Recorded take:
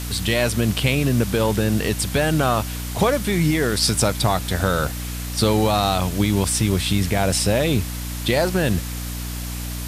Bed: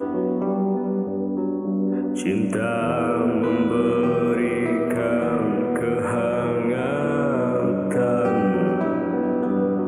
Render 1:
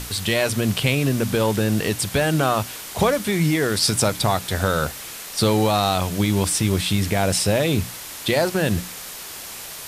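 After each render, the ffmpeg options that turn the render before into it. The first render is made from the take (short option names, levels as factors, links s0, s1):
-af "bandreject=f=60:t=h:w=6,bandreject=f=120:t=h:w=6,bandreject=f=180:t=h:w=6,bandreject=f=240:t=h:w=6,bandreject=f=300:t=h:w=6"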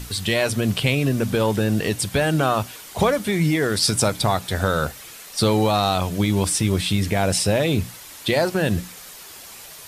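-af "afftdn=nr=7:nf=-36"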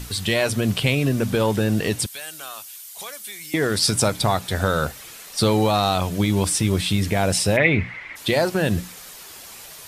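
-filter_complex "[0:a]asettb=1/sr,asplit=3[s0][s1][s2];[s0]atrim=end=2.064[s3];[s1]atrim=start=2.06:end=3.54,asetpts=PTS-STARTPTS,afade=t=in:d=0.004:c=qsin,afade=t=out:st=1.476:d=0.004:c=qsin,aderivative[s4];[s2]atrim=start=3.536[s5];[s3][s4]acrossfade=d=0.004:c1=hsin:c2=qsin[s6];[s6][s5]acrossfade=d=0.004:c1=qsin:c2=hsin,asplit=3[s7][s8][s9];[s7]afade=t=out:st=7.56:d=0.02[s10];[s8]lowpass=f=2100:t=q:w=9.4,afade=t=in:st=7.56:d=0.02,afade=t=out:st=8.15:d=0.02[s11];[s9]afade=t=in:st=8.15:d=0.02[s12];[s10][s11][s12]amix=inputs=3:normalize=0"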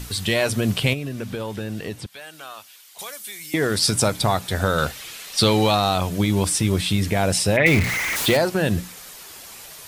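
-filter_complex "[0:a]asettb=1/sr,asplit=3[s0][s1][s2];[s0]atrim=end=0.934[s3];[s1]atrim=start=0.93:end=2.99,asetpts=PTS-STARTPTS,afade=t=in:d=0.004:c=qsin,afade=t=out:st=2.056:d=0.004:c=qsin,acrossover=split=1600|4700[s4][s5][s6];[s4]acompressor=threshold=0.0398:ratio=4[s7];[s5]acompressor=threshold=0.00891:ratio=4[s8];[s6]acompressor=threshold=0.00282:ratio=4[s9];[s7][s8][s9]amix=inputs=3:normalize=0[s10];[s2]atrim=start=2.986[s11];[s3][s10]acrossfade=d=0.004:c1=hsin:c2=qsin[s12];[s12][s11]acrossfade=d=0.004:c1=qsin:c2=hsin,asettb=1/sr,asplit=3[s13][s14][s15];[s13]atrim=end=4.784[s16];[s14]atrim=start=4.78:end=5.75,asetpts=PTS-STARTPTS,afade=t=in:d=0.004:c=qsin,afade=t=out:st=0.966:d=0.004:c=qsin,equalizer=f=3200:w=0.78:g=7[s17];[s15]atrim=start=5.746[s18];[s16][s17]acrossfade=d=0.004:c1=hsin:c2=qsin[s19];[s19][s18]acrossfade=d=0.004:c1=qsin:c2=hsin,asettb=1/sr,asplit=3[s20][s21][s22];[s20]atrim=end=7.664[s23];[s21]atrim=start=7.66:end=8.37,asetpts=PTS-STARTPTS,afade=t=in:d=0.004:c=qsin,afade=t=out:st=0.706:d=0.004:c=qsin,aeval=exprs='val(0)+0.5*0.1*sgn(val(0))':c=same[s24];[s22]atrim=start=8.366[s25];[s23][s24]acrossfade=d=0.004:c1=hsin:c2=qsin[s26];[s26][s25]acrossfade=d=0.004:c1=qsin:c2=hsin"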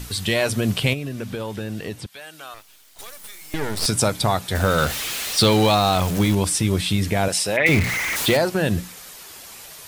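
-filter_complex "[0:a]asettb=1/sr,asplit=3[s0][s1][s2];[s0]atrim=end=2.544[s3];[s1]atrim=start=2.54:end=3.86,asetpts=PTS-STARTPTS,afade=t=in:d=0.004:c=qsin,afade=t=out:st=1.316:d=0.004:c=qsin,aeval=exprs='max(val(0),0)':c=same[s4];[s2]atrim=start=3.856[s5];[s3][s4]acrossfade=d=0.004:c1=hsin:c2=qsin[s6];[s6][s5]acrossfade=d=0.004:c1=qsin:c2=hsin,asettb=1/sr,asplit=3[s7][s8][s9];[s7]atrim=end=4.554[s10];[s8]atrim=start=4.55:end=6.35,asetpts=PTS-STARTPTS,afade=t=in:d=0.004:c=qsin,afade=t=out:st=1.796:d=0.004:c=qsin,aeval=exprs='val(0)+0.5*0.0596*sgn(val(0))':c=same[s11];[s9]atrim=start=6.346[s12];[s10][s11]acrossfade=d=0.004:c1=hsin:c2=qsin[s13];[s13][s12]acrossfade=d=0.004:c1=qsin:c2=hsin,asettb=1/sr,asplit=3[s14][s15][s16];[s14]atrim=end=7.284[s17];[s15]atrim=start=7.28:end=7.69,asetpts=PTS-STARTPTS,afade=t=in:d=0.004:c=qsin,afade=t=out:st=0.406:d=0.004:c=qsin,highpass=f=470:p=1[s18];[s16]atrim=start=7.686[s19];[s17][s18]acrossfade=d=0.004:c1=hsin:c2=qsin[s20];[s20][s19]acrossfade=d=0.004:c1=qsin:c2=hsin"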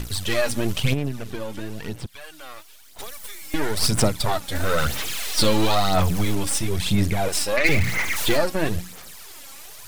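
-af "aeval=exprs='if(lt(val(0),0),0.251*val(0),val(0))':c=same,aphaser=in_gain=1:out_gain=1:delay=3.7:decay=0.54:speed=1:type=sinusoidal"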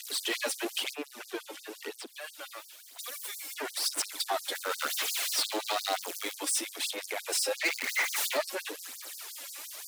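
-af "asoftclip=type=tanh:threshold=0.0944,afftfilt=real='re*gte(b*sr/1024,240*pow(4500/240,0.5+0.5*sin(2*PI*5.7*pts/sr)))':imag='im*gte(b*sr/1024,240*pow(4500/240,0.5+0.5*sin(2*PI*5.7*pts/sr)))':win_size=1024:overlap=0.75"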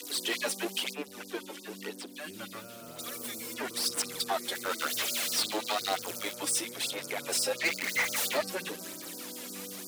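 -filter_complex "[1:a]volume=0.0531[s0];[0:a][s0]amix=inputs=2:normalize=0"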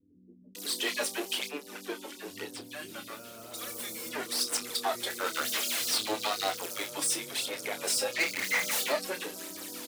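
-filter_complex "[0:a]asplit=2[s0][s1];[s1]adelay=28,volume=0.376[s2];[s0][s2]amix=inputs=2:normalize=0,acrossover=split=190[s3][s4];[s4]adelay=550[s5];[s3][s5]amix=inputs=2:normalize=0"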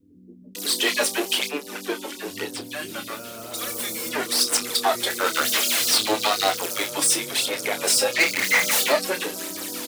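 -af "volume=2.99"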